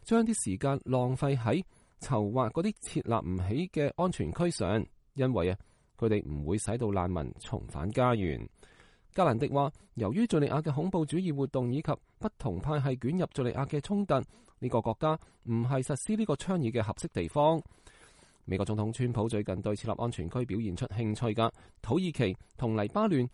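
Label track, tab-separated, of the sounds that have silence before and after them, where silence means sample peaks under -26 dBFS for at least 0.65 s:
9.180000	17.590000	sound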